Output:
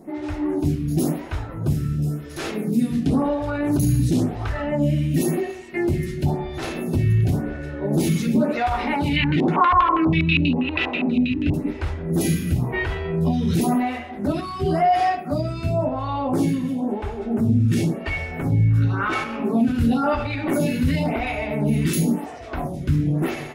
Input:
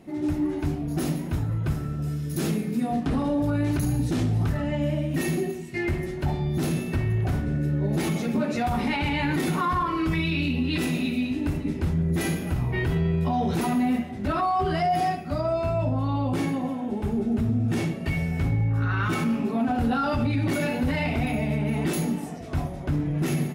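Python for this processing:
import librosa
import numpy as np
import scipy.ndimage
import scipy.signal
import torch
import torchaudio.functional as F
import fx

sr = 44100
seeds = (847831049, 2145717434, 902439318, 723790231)

y = fx.filter_lfo_lowpass(x, sr, shape='square', hz=6.2, low_hz=890.0, high_hz=2900.0, q=2.7, at=(9.16, 11.54))
y = fx.stagger_phaser(y, sr, hz=0.95)
y = F.gain(torch.from_numpy(y), 7.0).numpy()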